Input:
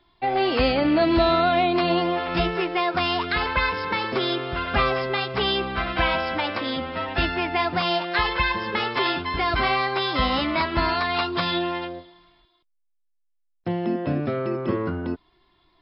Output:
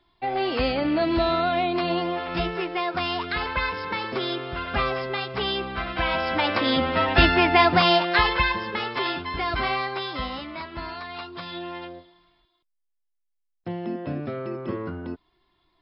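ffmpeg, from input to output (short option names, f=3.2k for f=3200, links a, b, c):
-af "volume=13dB,afade=t=in:st=6.04:d=0.83:silence=0.316228,afade=t=out:st=7.65:d=1.07:silence=0.316228,afade=t=out:st=9.75:d=0.7:silence=0.375837,afade=t=in:st=11.49:d=0.4:silence=0.473151"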